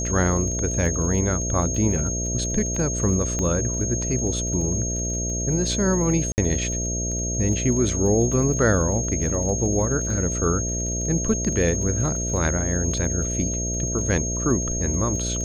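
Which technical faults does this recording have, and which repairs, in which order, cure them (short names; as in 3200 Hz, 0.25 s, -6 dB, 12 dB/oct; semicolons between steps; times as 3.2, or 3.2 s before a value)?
buzz 60 Hz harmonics 11 -28 dBFS
crackle 24/s -31 dBFS
tone 6500 Hz -27 dBFS
3.39 pop -14 dBFS
6.32–6.38 gap 59 ms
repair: de-click; de-hum 60 Hz, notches 11; notch 6500 Hz, Q 30; interpolate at 6.32, 59 ms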